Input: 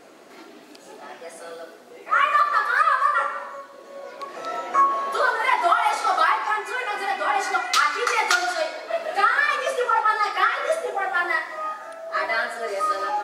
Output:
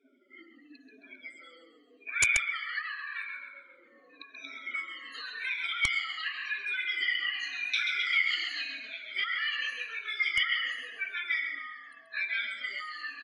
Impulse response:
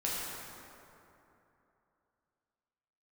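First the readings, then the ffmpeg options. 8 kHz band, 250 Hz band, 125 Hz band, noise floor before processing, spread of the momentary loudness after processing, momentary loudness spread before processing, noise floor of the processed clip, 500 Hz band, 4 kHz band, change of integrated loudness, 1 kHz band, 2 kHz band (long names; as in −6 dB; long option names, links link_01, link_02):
−4.0 dB, below −15 dB, can't be measured, −46 dBFS, 16 LU, 18 LU, −60 dBFS, below −30 dB, −1.0 dB, −9.0 dB, −25.5 dB, −5.5 dB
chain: -filter_complex "[0:a]afftfilt=real='re*pow(10,21/40*sin(2*PI*(1.6*log(max(b,1)*sr/1024/100)/log(2)-(-0.89)*(pts-256)/sr)))':imag='im*pow(10,21/40*sin(2*PI*(1.6*log(max(b,1)*sr/1024/100)/log(2)-(-0.89)*(pts-256)/sr)))':win_size=1024:overlap=0.75,afftdn=noise_reduction=28:noise_floor=-36,acrossover=split=4600[link_01][link_02];[link_02]acompressor=threshold=-43dB:ratio=4:attack=1:release=60[link_03];[link_01][link_03]amix=inputs=2:normalize=0,tiltshelf=frequency=750:gain=-9,asplit=2[link_04][link_05];[link_05]asplit=6[link_06][link_07][link_08][link_09][link_10][link_11];[link_06]adelay=133,afreqshift=-37,volume=-9.5dB[link_12];[link_07]adelay=266,afreqshift=-74,volume=-15.3dB[link_13];[link_08]adelay=399,afreqshift=-111,volume=-21.2dB[link_14];[link_09]adelay=532,afreqshift=-148,volume=-27dB[link_15];[link_10]adelay=665,afreqshift=-185,volume=-32.9dB[link_16];[link_11]adelay=798,afreqshift=-222,volume=-38.7dB[link_17];[link_12][link_13][link_14][link_15][link_16][link_17]amix=inputs=6:normalize=0[link_18];[link_04][link_18]amix=inputs=2:normalize=0,alimiter=limit=-4.5dB:level=0:latency=1:release=72,acrossover=split=1400[link_19][link_20];[link_19]acompressor=threshold=-31dB:ratio=16[link_21];[link_21][link_20]amix=inputs=2:normalize=0,asplit=3[link_22][link_23][link_24];[link_22]bandpass=frequency=270:width_type=q:width=8,volume=0dB[link_25];[link_23]bandpass=frequency=2290:width_type=q:width=8,volume=-6dB[link_26];[link_24]bandpass=frequency=3010:width_type=q:width=8,volume=-9dB[link_27];[link_25][link_26][link_27]amix=inputs=3:normalize=0,aeval=exprs='(mod(8.41*val(0)+1,2)-1)/8.41':channel_layout=same,asubboost=boost=6:cutoff=120,volume=3dB" -ar 24000 -c:a libmp3lame -b:a 64k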